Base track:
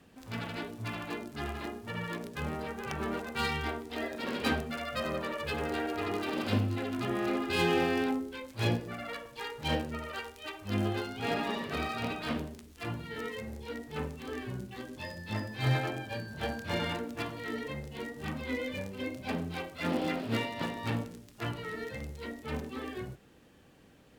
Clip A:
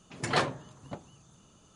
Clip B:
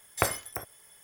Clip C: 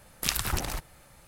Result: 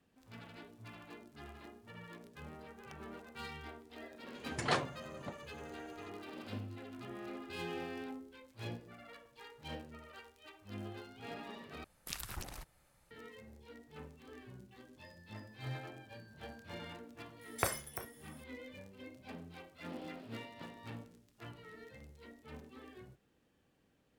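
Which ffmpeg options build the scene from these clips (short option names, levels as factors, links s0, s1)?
-filter_complex "[0:a]volume=0.188[s0];[2:a]asplit=2[s1][s2];[s2]adelay=33,volume=0.251[s3];[s1][s3]amix=inputs=2:normalize=0[s4];[s0]asplit=2[s5][s6];[s5]atrim=end=11.844[s7];[3:a]atrim=end=1.27,asetpts=PTS-STARTPTS,volume=0.178[s8];[s6]atrim=start=13.106[s9];[1:a]atrim=end=1.75,asetpts=PTS-STARTPTS,volume=0.531,afade=t=in:d=0.004:c=hsin,afade=t=out:st=1.746:d=0.004:c=hsin,adelay=4350[s10];[s4]atrim=end=1.03,asetpts=PTS-STARTPTS,volume=0.422,afade=t=in:d=0.004:c=hsin,afade=t=out:st=1.026:d=0.004:c=hsin,adelay=17410[s11];[s7][s8]acrossfade=d=0.004:c1=hsin:c2=hsin[s12];[s12][s9]acrossfade=d=0.004:c1=hsin:c2=hsin[s13];[s13][s10][s11]amix=inputs=3:normalize=0"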